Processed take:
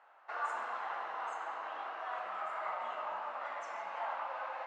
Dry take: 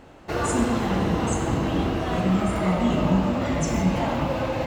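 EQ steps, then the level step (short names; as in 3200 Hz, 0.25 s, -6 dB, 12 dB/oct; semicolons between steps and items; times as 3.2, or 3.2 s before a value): Butterworth band-pass 1000 Hz, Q 1.2; differentiator; +9.5 dB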